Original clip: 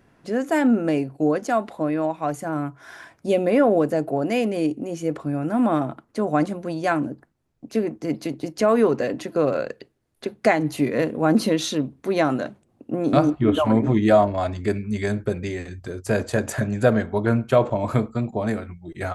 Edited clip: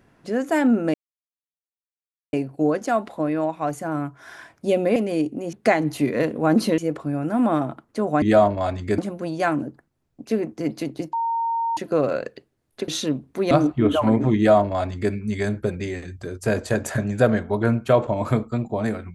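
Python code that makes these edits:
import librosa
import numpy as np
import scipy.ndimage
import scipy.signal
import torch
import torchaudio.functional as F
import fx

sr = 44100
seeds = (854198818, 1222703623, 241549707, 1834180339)

y = fx.edit(x, sr, fx.insert_silence(at_s=0.94, length_s=1.39),
    fx.cut(start_s=3.57, length_s=0.84),
    fx.bleep(start_s=8.57, length_s=0.64, hz=920.0, db=-20.5),
    fx.move(start_s=10.32, length_s=1.25, to_s=4.98),
    fx.cut(start_s=12.2, length_s=0.94),
    fx.duplicate(start_s=13.99, length_s=0.76, to_s=6.42), tone=tone)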